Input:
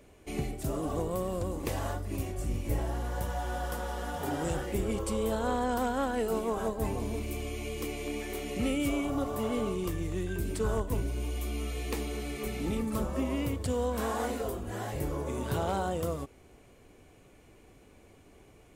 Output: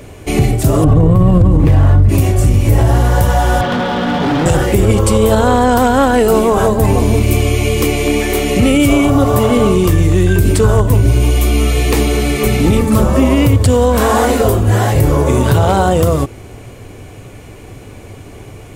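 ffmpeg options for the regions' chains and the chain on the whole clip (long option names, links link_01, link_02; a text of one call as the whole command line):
ffmpeg -i in.wav -filter_complex "[0:a]asettb=1/sr,asplit=3[link_01][link_02][link_03];[link_01]atrim=end=0.844[link_04];[link_02]atrim=start=0.84:end=2.09,asetpts=PTS-STARTPTS,afade=type=in:duration=0.004:curve=qsin,afade=type=out:start_time=1.246:duration=0.004:curve=qsin,bass=frequency=250:gain=13,treble=frequency=4000:gain=-14,aecho=1:1:6.4:0.4,atrim=end_sample=55125[link_05];[link_03]atrim=start=2.086[link_06];[link_04][link_05]acrossfade=duration=0.004:curve1=hsin:curve2=qsin[link_07];[link_07][link_06]acrossfade=duration=0.004:curve1=qsin:curve2=hsin,asettb=1/sr,asplit=3[link_08][link_09][link_10];[link_08]atrim=end=3.614[link_11];[link_09]atrim=start=3.61:end=4.46,asetpts=PTS-STARTPTS,afade=type=in:duration=0.004:curve=qsin,afade=type=out:start_time=0.846:duration=0.004:curve=qsin,highpass=frequency=120:width=0.5412,highpass=frequency=120:width=1.3066,equalizer=frequency=180:width_type=q:width=4:gain=7,equalizer=frequency=250:width_type=q:width=4:gain=10,equalizer=frequency=3400:width_type=q:width=4:gain=6,lowpass=frequency=4300:width=0.5412,lowpass=frequency=4300:width=1.3066,asoftclip=type=hard:threshold=-34dB[link_12];[link_10]atrim=start=4.456[link_13];[link_11][link_12]acrossfade=duration=0.004:curve1=hsin:curve2=qsin[link_14];[link_14][link_13]acrossfade=duration=0.004:curve1=qsin:curve2=hsin,equalizer=frequency=110:width=3.1:gain=12.5,bandreject=frequency=111.8:width_type=h:width=4,bandreject=frequency=223.6:width_type=h:width=4,bandreject=frequency=335.4:width_type=h:width=4,alimiter=level_in=22.5dB:limit=-1dB:release=50:level=0:latency=1,volume=-1dB" out.wav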